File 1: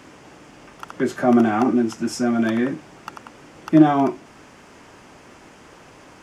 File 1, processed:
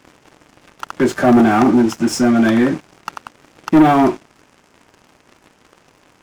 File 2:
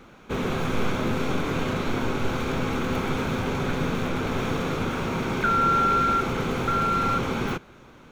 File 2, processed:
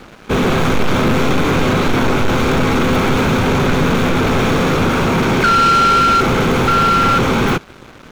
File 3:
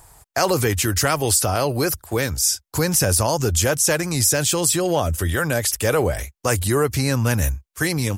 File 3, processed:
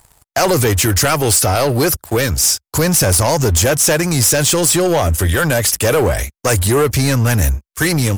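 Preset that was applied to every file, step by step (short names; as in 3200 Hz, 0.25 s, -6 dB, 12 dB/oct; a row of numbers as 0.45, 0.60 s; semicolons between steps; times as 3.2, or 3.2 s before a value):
sample leveller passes 3; match loudness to -14 LUFS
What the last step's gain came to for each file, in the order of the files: -3.0, +3.5, -2.5 dB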